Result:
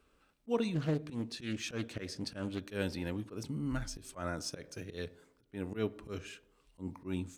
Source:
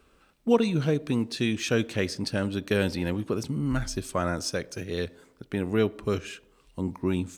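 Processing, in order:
volume swells 105 ms
feedback delay network reverb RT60 0.35 s, low-frequency decay 1.35×, high-frequency decay 0.35×, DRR 16.5 dB
0:00.74–0:02.62: highs frequency-modulated by the lows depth 0.38 ms
level −8.5 dB

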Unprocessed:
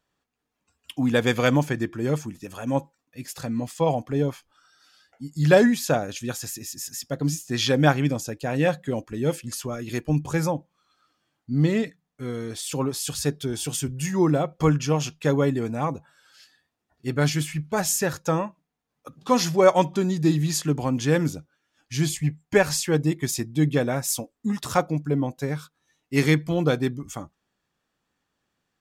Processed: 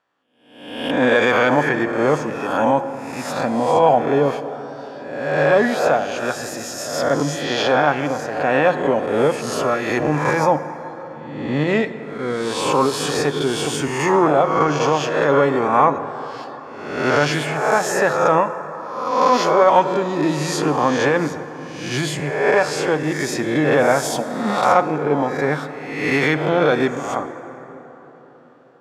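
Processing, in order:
peak hold with a rise ahead of every peak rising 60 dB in 0.86 s
harmonic generator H 2 −16 dB, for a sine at −2.5 dBFS
automatic gain control gain up to 9.5 dB
brickwall limiter −8 dBFS, peak gain reduction 7 dB
resonant band-pass 1,000 Hz, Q 0.75
dense smooth reverb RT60 4.4 s, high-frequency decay 0.4×, DRR 11 dB
level +6.5 dB

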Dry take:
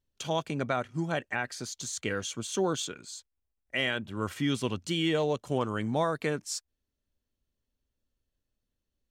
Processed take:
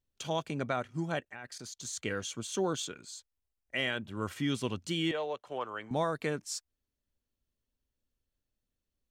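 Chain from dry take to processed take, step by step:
0:01.20–0:01.85: output level in coarse steps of 14 dB
0:05.11–0:05.91: three-way crossover with the lows and the highs turned down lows −19 dB, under 450 Hz, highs −16 dB, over 3,800 Hz
level −3 dB

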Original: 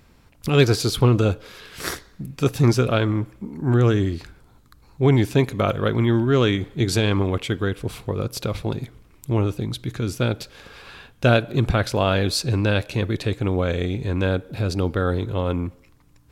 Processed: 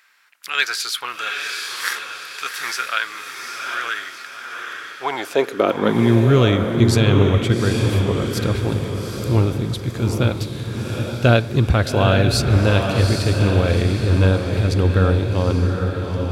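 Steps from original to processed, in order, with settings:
high-pass filter sweep 1,600 Hz → 66 Hz, 0:04.76–0:06.55
feedback delay with all-pass diffusion 816 ms, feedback 45%, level −4 dB
level +1.5 dB

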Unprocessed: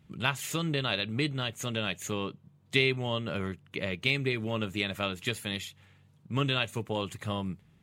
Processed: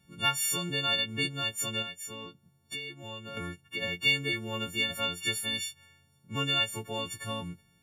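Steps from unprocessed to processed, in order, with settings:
every partial snapped to a pitch grid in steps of 4 semitones
0:01.82–0:03.37: downward compressor 4 to 1, threshold −35 dBFS, peak gain reduction 16.5 dB
level −4.5 dB

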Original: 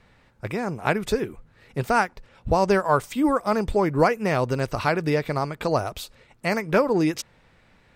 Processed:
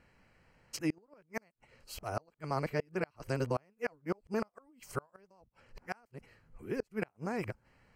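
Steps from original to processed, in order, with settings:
played backwards from end to start
gate with flip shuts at −13 dBFS, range −35 dB
Butterworth band-reject 3,600 Hz, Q 4.7
level −8.5 dB

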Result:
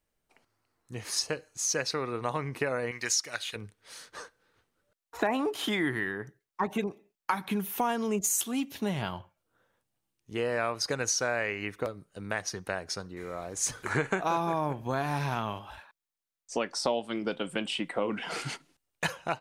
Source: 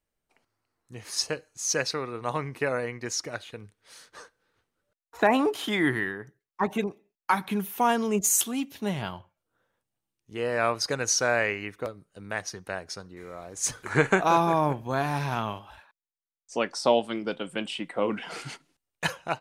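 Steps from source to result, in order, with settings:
0:02.91–0:03.56: tilt shelving filter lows −9.5 dB, about 1,100 Hz
downward compressor 3 to 1, threshold −31 dBFS, peak gain reduction 12 dB
level +3 dB

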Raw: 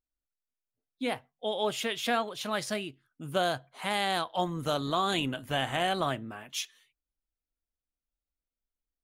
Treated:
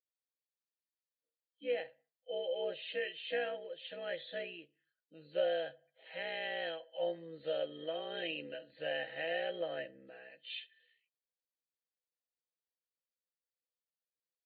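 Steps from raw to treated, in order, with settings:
hearing-aid frequency compression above 3,000 Hz 4 to 1
time stretch by overlap-add 1.6×, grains 33 ms
formant filter e
level +4 dB

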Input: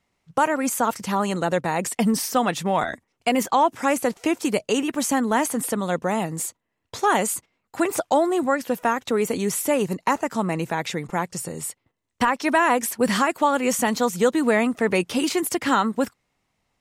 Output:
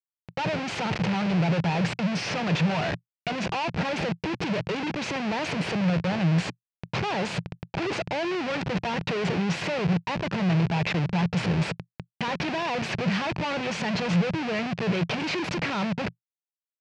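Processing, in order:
background noise pink −45 dBFS
comparator with hysteresis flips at −33.5 dBFS
loudspeaker in its box 110–4,800 Hz, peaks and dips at 120 Hz +7 dB, 170 Hz +10 dB, 260 Hz −7 dB, 1,200 Hz −4 dB, 2,500 Hz +5 dB, 3,600 Hz −3 dB
level −3.5 dB

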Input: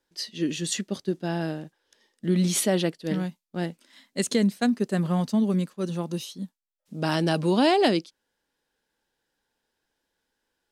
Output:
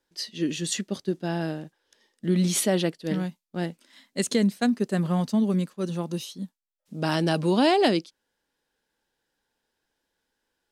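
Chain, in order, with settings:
no processing that can be heard

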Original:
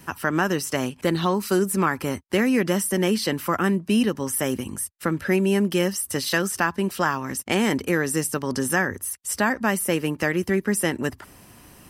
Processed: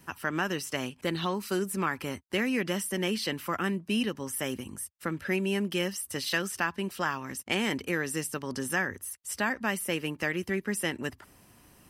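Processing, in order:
dynamic equaliser 2,800 Hz, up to +7 dB, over −40 dBFS, Q 1
level −9 dB

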